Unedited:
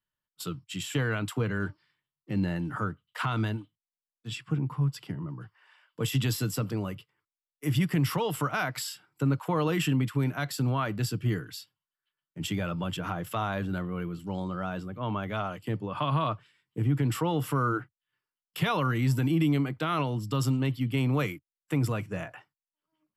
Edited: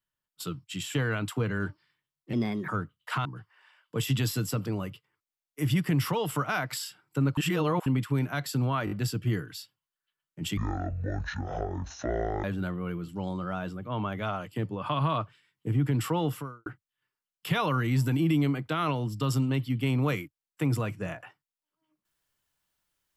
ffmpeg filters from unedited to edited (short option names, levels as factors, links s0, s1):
-filter_complex "[0:a]asplit=12[s0][s1][s2][s3][s4][s5][s6][s7][s8][s9][s10][s11];[s0]atrim=end=2.334[s12];[s1]atrim=start=2.33:end=2.76,asetpts=PTS-STARTPTS,asetrate=53802,aresample=44100,atrim=end_sample=15543,asetpts=PTS-STARTPTS[s13];[s2]atrim=start=2.756:end=3.332[s14];[s3]atrim=start=5.298:end=9.422[s15];[s4]atrim=start=9.418:end=9.912,asetpts=PTS-STARTPTS,areverse[s16];[s5]atrim=start=9.908:end=10.922[s17];[s6]atrim=start=10.898:end=10.922[s18];[s7]atrim=start=10.898:end=10.922[s19];[s8]atrim=start=10.898:end=12.564[s20];[s9]atrim=start=12.56:end=13.55,asetpts=PTS-STARTPTS,asetrate=23373,aresample=44100,atrim=end_sample=82375,asetpts=PTS-STARTPTS[s21];[s10]atrim=start=13.546:end=17.77,asetpts=PTS-STARTPTS,afade=t=out:st=3.844:d=0.38:c=qua[s22];[s11]atrim=start=17.77,asetpts=PTS-STARTPTS,afade=t=in:d=0.004:c=hsin[s23];[s12][s13]acrossfade=d=0.004:c1=hsin:c2=hsin[s24];[s24][s14]acrossfade=d=0.004:c1=hsin:c2=hsin[s25];[s25][s15]acrossfade=d=0.004:c1=hsin:c2=hsin[s26];[s26][s16]acrossfade=d=0.004:c1=hsin:c2=hsin[s27];[s27][s17]acrossfade=d=0.004:c1=hsin:c2=hsin[s28];[s28][s18]acrossfade=d=0.004:c1=hsin:c2=hsin[s29];[s29][s19]acrossfade=d=0.004:c1=hsin:c2=hsin[s30];[s30][s20]acrossfade=d=0.004:c1=hsin:c2=hsin[s31];[s31][s21]acrossfade=d=0.004:c1=hsin:c2=hsin[s32];[s22][s23]concat=n=2:v=0:a=1[s33];[s32][s33]acrossfade=d=0.004:c1=hsin:c2=hsin"